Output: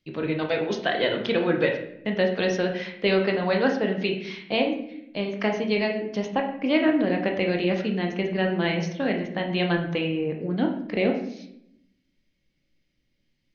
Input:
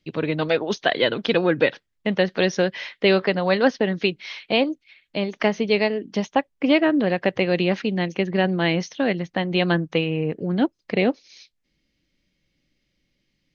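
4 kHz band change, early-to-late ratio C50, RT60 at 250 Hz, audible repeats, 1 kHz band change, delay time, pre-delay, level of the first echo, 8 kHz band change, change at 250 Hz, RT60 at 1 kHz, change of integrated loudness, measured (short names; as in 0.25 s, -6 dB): -4.5 dB, 6.5 dB, 1.2 s, none, -3.5 dB, none, 19 ms, none, n/a, -2.5 dB, 0.65 s, -3.0 dB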